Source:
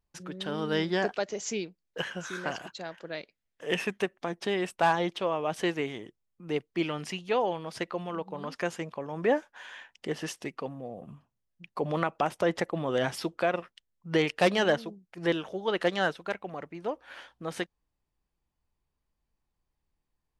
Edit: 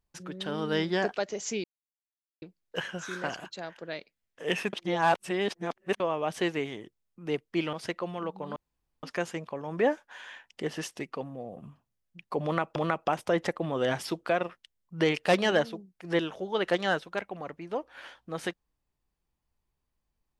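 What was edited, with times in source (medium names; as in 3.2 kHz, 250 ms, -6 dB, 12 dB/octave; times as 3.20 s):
1.64 s: insert silence 0.78 s
3.95–5.22 s: reverse
6.95–7.65 s: delete
8.48 s: insert room tone 0.47 s
11.89–12.21 s: loop, 2 plays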